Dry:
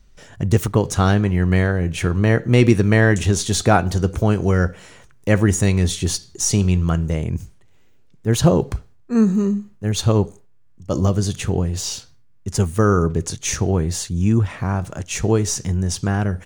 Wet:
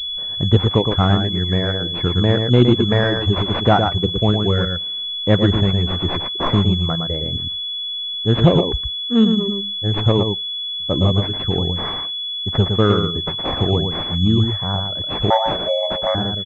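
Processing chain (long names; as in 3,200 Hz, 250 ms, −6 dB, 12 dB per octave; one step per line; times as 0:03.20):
reverb reduction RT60 1.9 s
single-tap delay 114 ms −5.5 dB
0:15.30–0:16.15: frequency shifter +450 Hz
switching amplifier with a slow clock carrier 3,400 Hz
level +1.5 dB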